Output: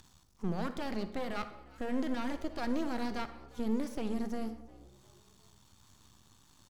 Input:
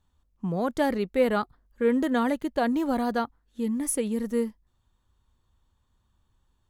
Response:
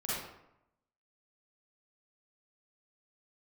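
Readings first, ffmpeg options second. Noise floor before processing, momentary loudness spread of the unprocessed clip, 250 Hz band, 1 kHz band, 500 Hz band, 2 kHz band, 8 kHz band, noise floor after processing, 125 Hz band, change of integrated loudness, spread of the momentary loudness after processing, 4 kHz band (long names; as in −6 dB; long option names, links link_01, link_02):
−72 dBFS, 8 LU, −8.5 dB, −10.5 dB, −13.0 dB, −9.5 dB, −19.0 dB, −64 dBFS, can't be measured, −10.0 dB, 8 LU, −5.5 dB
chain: -filter_complex "[0:a]equalizer=frequency=500:width_type=o:width=1:gain=-7,equalizer=frequency=2000:width_type=o:width=1:gain=-5,equalizer=frequency=4000:width_type=o:width=1:gain=-4,acompressor=mode=upward:threshold=-38dB:ratio=2.5,equalizer=frequency=5300:width=0.98:gain=13,alimiter=limit=-23.5dB:level=0:latency=1:release=30,acrossover=split=4500[link_01][link_02];[link_02]acompressor=threshold=-57dB:ratio=4:attack=1:release=60[link_03];[link_01][link_03]amix=inputs=2:normalize=0,highpass=110,aeval=exprs='max(val(0),0)':channel_layout=same,asplit=4[link_04][link_05][link_06][link_07];[link_05]adelay=355,afreqshift=65,volume=-22dB[link_08];[link_06]adelay=710,afreqshift=130,volume=-29.7dB[link_09];[link_07]adelay=1065,afreqshift=195,volume=-37.5dB[link_10];[link_04][link_08][link_09][link_10]amix=inputs=4:normalize=0,asplit=2[link_11][link_12];[1:a]atrim=start_sample=2205[link_13];[link_12][link_13]afir=irnorm=-1:irlink=0,volume=-13.5dB[link_14];[link_11][link_14]amix=inputs=2:normalize=0"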